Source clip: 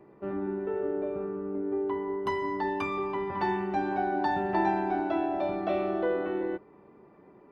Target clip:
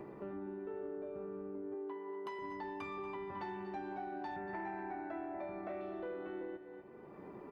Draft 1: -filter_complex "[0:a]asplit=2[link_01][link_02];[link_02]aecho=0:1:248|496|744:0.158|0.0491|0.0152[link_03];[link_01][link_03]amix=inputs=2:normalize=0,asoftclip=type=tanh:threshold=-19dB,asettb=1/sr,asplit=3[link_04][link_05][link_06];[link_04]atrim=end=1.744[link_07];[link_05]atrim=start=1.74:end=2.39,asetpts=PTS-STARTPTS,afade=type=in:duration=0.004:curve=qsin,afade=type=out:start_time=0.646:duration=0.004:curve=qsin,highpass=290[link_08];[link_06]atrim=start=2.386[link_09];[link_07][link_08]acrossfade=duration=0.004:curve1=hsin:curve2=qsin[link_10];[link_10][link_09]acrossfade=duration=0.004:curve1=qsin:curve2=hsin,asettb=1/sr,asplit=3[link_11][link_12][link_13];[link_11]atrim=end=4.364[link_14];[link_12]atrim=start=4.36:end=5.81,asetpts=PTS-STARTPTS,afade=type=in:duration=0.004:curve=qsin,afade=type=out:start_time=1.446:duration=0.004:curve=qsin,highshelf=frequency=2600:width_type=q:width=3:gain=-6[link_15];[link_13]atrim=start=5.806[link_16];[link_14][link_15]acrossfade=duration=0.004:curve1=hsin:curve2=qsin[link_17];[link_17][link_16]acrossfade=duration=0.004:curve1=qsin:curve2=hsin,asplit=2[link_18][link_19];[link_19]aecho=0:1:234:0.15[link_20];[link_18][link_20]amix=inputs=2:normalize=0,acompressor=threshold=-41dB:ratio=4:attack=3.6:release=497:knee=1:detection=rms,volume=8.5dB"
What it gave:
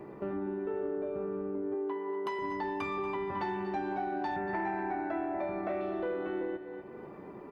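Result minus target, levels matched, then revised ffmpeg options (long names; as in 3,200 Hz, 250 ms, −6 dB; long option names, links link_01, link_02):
downward compressor: peak gain reduction −8.5 dB
-filter_complex "[0:a]asplit=2[link_01][link_02];[link_02]aecho=0:1:248|496|744:0.158|0.0491|0.0152[link_03];[link_01][link_03]amix=inputs=2:normalize=0,asoftclip=type=tanh:threshold=-19dB,asettb=1/sr,asplit=3[link_04][link_05][link_06];[link_04]atrim=end=1.744[link_07];[link_05]atrim=start=1.74:end=2.39,asetpts=PTS-STARTPTS,afade=type=in:duration=0.004:curve=qsin,afade=type=out:start_time=0.646:duration=0.004:curve=qsin,highpass=290[link_08];[link_06]atrim=start=2.386[link_09];[link_07][link_08]acrossfade=duration=0.004:curve1=hsin:curve2=qsin[link_10];[link_10][link_09]acrossfade=duration=0.004:curve1=qsin:curve2=hsin,asettb=1/sr,asplit=3[link_11][link_12][link_13];[link_11]atrim=end=4.364[link_14];[link_12]atrim=start=4.36:end=5.81,asetpts=PTS-STARTPTS,afade=type=in:duration=0.004:curve=qsin,afade=type=out:start_time=1.446:duration=0.004:curve=qsin,highshelf=frequency=2600:width_type=q:width=3:gain=-6[link_15];[link_13]atrim=start=5.806[link_16];[link_14][link_15]acrossfade=duration=0.004:curve1=hsin:curve2=qsin[link_17];[link_17][link_16]acrossfade=duration=0.004:curve1=qsin:curve2=hsin,asplit=2[link_18][link_19];[link_19]aecho=0:1:234:0.15[link_20];[link_18][link_20]amix=inputs=2:normalize=0,acompressor=threshold=-52.5dB:ratio=4:attack=3.6:release=497:knee=1:detection=rms,volume=8.5dB"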